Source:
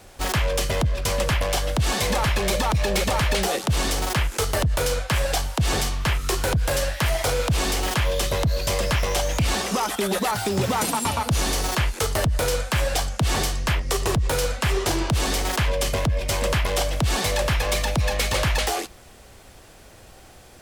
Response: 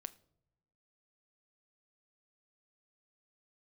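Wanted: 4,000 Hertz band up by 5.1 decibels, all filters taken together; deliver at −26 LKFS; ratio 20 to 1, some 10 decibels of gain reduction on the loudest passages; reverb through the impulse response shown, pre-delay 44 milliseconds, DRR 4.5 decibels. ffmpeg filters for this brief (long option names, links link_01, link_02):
-filter_complex "[0:a]equalizer=frequency=4000:width_type=o:gain=6.5,acompressor=threshold=-27dB:ratio=20,asplit=2[link_01][link_02];[1:a]atrim=start_sample=2205,adelay=44[link_03];[link_02][link_03]afir=irnorm=-1:irlink=0,volume=0dB[link_04];[link_01][link_04]amix=inputs=2:normalize=0,volume=3.5dB"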